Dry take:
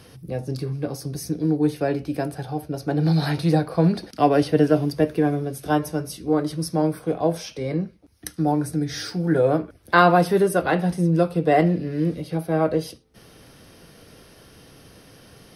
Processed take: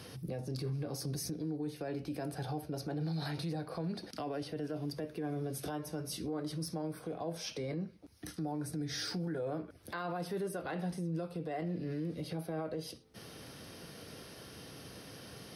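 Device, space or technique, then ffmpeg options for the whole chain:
broadcast voice chain: -af "highpass=78,deesser=0.5,acompressor=threshold=-31dB:ratio=5,equalizer=f=4.4k:t=o:w=0.77:g=2.5,alimiter=level_in=4.5dB:limit=-24dB:level=0:latency=1:release=19,volume=-4.5dB,volume=-1.5dB"

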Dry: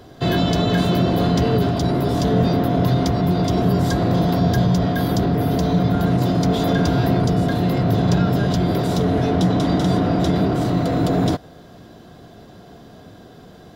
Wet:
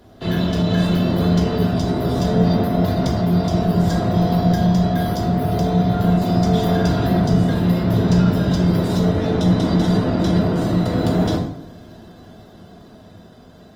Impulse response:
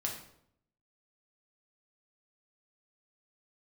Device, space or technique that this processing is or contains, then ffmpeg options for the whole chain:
speakerphone in a meeting room: -filter_complex "[1:a]atrim=start_sample=2205[a];[0:a][a]afir=irnorm=-1:irlink=0,dynaudnorm=f=170:g=17:m=11.5dB,volume=-4.5dB" -ar 48000 -c:a libopus -b:a 24k

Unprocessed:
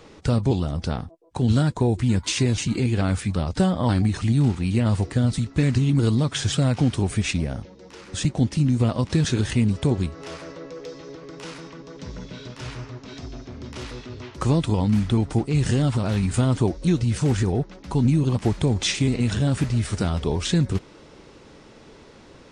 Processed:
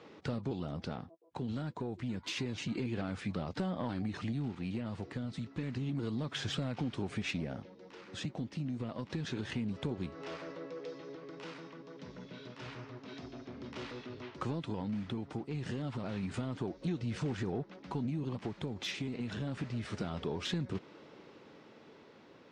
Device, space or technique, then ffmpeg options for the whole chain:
AM radio: -af "highpass=160,lowpass=3.9k,acompressor=threshold=-24dB:ratio=6,asoftclip=type=tanh:threshold=-18.5dB,tremolo=f=0.29:d=0.29,volume=-6dB"

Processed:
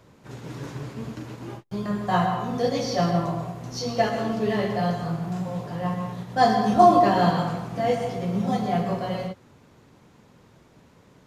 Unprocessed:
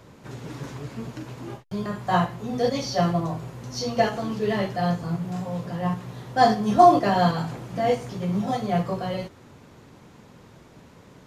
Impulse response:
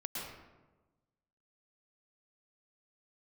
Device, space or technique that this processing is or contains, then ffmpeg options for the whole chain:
keyed gated reverb: -filter_complex "[0:a]asplit=3[a][b][c];[1:a]atrim=start_sample=2205[d];[b][d]afir=irnorm=-1:irlink=0[e];[c]apad=whole_len=496968[f];[e][f]sidechaingate=range=-46dB:threshold=-38dB:ratio=16:detection=peak,volume=-1dB[g];[a][g]amix=inputs=2:normalize=0,volume=-5dB"

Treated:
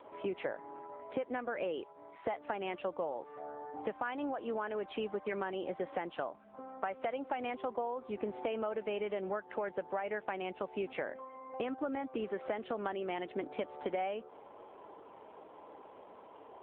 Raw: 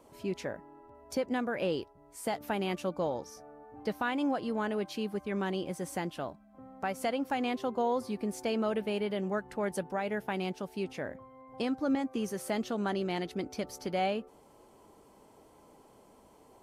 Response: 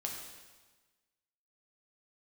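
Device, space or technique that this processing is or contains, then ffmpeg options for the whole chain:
voicemail: -af "highpass=420,lowpass=2.6k,acompressor=threshold=-42dB:ratio=8,volume=9.5dB" -ar 8000 -c:a libopencore_amrnb -b:a 7400

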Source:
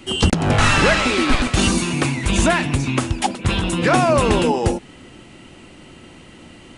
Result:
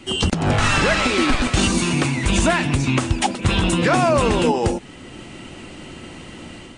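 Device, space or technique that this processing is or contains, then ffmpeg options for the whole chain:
low-bitrate web radio: -af "dynaudnorm=f=200:g=3:m=6dB,alimiter=limit=-7dB:level=0:latency=1:release=190" -ar 22050 -c:a libmp3lame -b:a 48k

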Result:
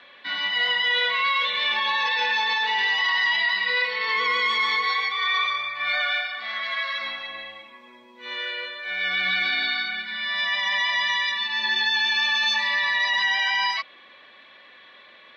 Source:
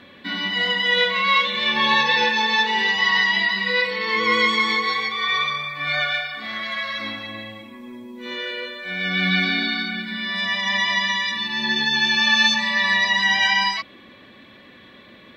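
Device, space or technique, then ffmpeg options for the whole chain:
DJ mixer with the lows and highs turned down: -filter_complex "[0:a]acrossover=split=550 5800:gain=0.0794 1 0.141[a][b][c];[a][b][c]amix=inputs=3:normalize=0,alimiter=limit=-15dB:level=0:latency=1:release=11"

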